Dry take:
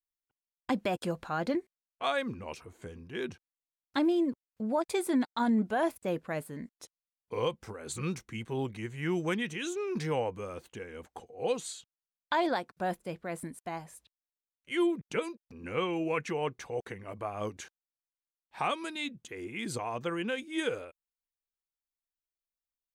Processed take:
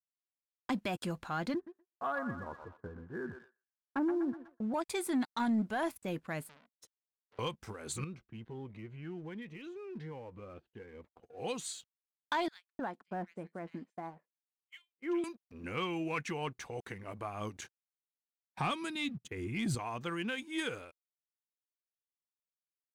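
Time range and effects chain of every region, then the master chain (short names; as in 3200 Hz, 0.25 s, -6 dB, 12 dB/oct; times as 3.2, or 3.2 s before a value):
1.54–4.74 steep low-pass 1700 Hz 72 dB/oct + thinning echo 0.123 s, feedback 64%, high-pass 890 Hz, level -6 dB
6.49–7.39 compressor, threshold -45 dBFS + core saturation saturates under 3300 Hz
8.04–11.23 compressor 2:1, threshold -45 dBFS + air absorption 340 m + cascading phaser rising 1.3 Hz
12.48–15.24 brick-wall FIR high-pass 160 Hz + tape spacing loss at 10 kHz 31 dB + bands offset in time highs, lows 0.31 s, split 2300 Hz
17.61–19.75 gate -50 dBFS, range -11 dB + bell 120 Hz +13 dB 1.8 oct
whole clip: expander -48 dBFS; dynamic EQ 510 Hz, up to -8 dB, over -45 dBFS, Q 1.4; sample leveller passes 1; gain -4.5 dB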